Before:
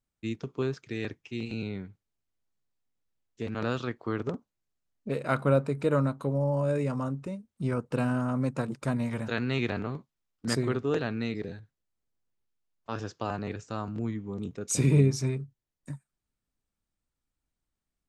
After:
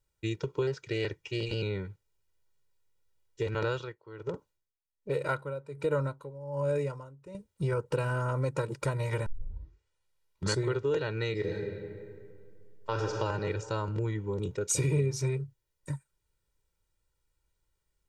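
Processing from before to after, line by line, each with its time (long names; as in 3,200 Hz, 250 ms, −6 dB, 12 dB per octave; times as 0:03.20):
0:00.67–0:01.62: highs frequency-modulated by the lows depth 0.15 ms
0:03.68–0:07.35: tremolo with a sine in dB 1.3 Hz, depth 22 dB
0:09.26: tape start 1.40 s
0:11.32–0:13.16: thrown reverb, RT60 2.2 s, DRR 1.5 dB
whole clip: comb filter 2.1 ms, depth 96%; downward compressor 3 to 1, threshold −31 dBFS; level +3 dB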